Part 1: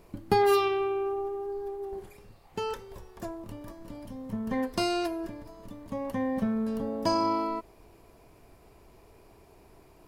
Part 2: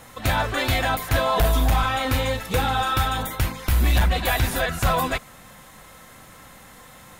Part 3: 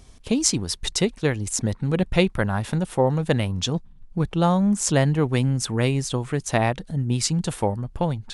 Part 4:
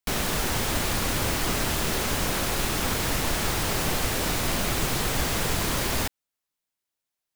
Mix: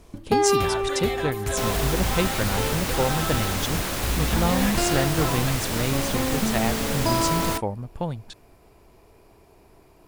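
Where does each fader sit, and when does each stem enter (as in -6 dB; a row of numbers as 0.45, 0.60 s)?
+2.0, -8.5, -5.0, -1.5 dB; 0.00, 0.35, 0.00, 1.50 s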